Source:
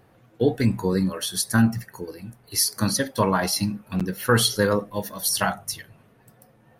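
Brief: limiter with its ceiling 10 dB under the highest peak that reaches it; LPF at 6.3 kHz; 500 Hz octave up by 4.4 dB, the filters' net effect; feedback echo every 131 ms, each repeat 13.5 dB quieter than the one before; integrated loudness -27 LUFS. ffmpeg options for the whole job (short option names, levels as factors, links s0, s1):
-af "lowpass=6300,equalizer=f=500:t=o:g=5,alimiter=limit=0.188:level=0:latency=1,aecho=1:1:131|262:0.211|0.0444,volume=0.944"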